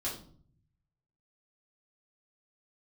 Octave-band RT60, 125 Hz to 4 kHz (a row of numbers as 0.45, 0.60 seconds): 1.3, 0.85, 0.55, 0.45, 0.35, 0.35 seconds